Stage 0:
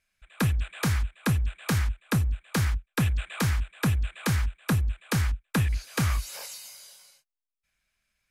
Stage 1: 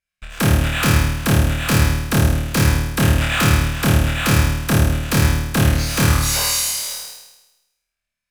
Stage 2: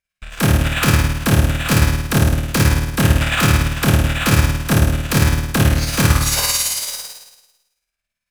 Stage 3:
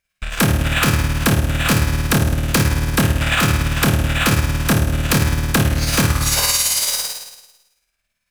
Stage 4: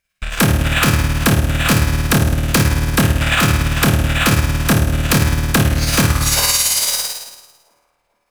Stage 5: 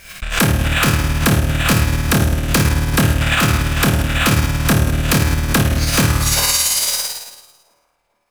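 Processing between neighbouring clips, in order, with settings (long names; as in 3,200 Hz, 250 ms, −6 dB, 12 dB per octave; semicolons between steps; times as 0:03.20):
leveller curve on the samples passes 5; flutter between parallel walls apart 4.5 metres, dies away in 1 s; level −1 dB
amplitude tremolo 18 Hz, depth 43%; level +3 dB
downward compressor, threshold −21 dBFS, peak gain reduction 13 dB; level +7.5 dB
delay with a band-pass on its return 430 ms, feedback 42%, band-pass 600 Hz, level −22.5 dB; level +2 dB
delay that plays each chunk backwards 109 ms, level −14 dB; background raised ahead of every attack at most 100 dB per second; level −1 dB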